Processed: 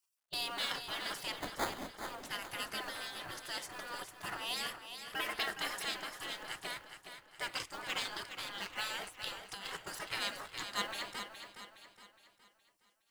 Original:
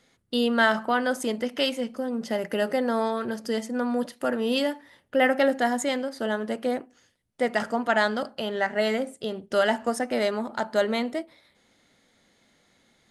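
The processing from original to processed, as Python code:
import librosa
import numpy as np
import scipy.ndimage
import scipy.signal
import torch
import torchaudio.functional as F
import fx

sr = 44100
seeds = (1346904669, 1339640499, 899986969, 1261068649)

p1 = fx.law_mismatch(x, sr, coded='A')
p2 = fx.spec_gate(p1, sr, threshold_db=-20, keep='weak')
p3 = fx.sample_hold(p2, sr, seeds[0], rate_hz=2800.0, jitter_pct=0, at=(1.36, 2.03))
p4 = fx.over_compress(p3, sr, threshold_db=-43.0, ratio=-1.0, at=(9.06, 9.77), fade=0.02)
p5 = p4 + fx.echo_feedback(p4, sr, ms=416, feedback_pct=43, wet_db=-9, dry=0)
y = p5 * 10.0 ** (1.0 / 20.0)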